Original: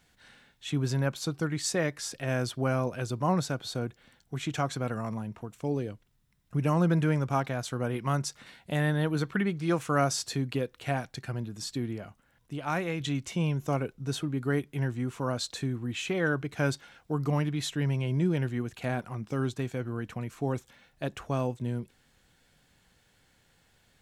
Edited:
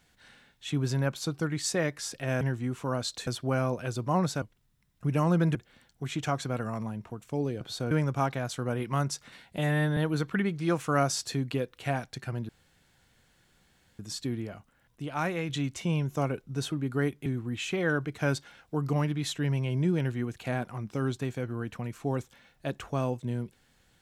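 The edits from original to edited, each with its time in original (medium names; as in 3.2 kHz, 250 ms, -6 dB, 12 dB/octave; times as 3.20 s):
3.56–3.86 s: swap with 5.92–7.05 s
8.72–8.98 s: stretch 1.5×
11.50 s: insert room tone 1.50 s
14.77–15.63 s: move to 2.41 s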